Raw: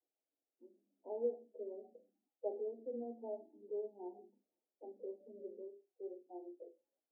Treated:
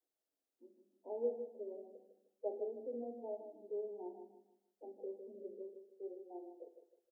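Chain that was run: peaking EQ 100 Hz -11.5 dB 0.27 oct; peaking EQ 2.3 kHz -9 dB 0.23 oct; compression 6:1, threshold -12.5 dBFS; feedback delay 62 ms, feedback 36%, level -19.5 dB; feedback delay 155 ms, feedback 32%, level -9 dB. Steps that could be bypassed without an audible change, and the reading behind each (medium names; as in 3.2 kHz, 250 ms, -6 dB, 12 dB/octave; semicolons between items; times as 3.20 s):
peaking EQ 100 Hz: input has nothing below 190 Hz; peaking EQ 2.3 kHz: input has nothing above 910 Hz; compression, threshold -12.5 dBFS: peak at its input -26.5 dBFS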